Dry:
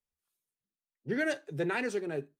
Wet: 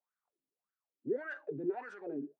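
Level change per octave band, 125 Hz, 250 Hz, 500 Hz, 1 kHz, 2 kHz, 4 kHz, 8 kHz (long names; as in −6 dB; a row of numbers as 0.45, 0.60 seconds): −11.5 dB, −5.0 dB, −4.5 dB, −6.0 dB, −10.5 dB, below −20 dB, below −25 dB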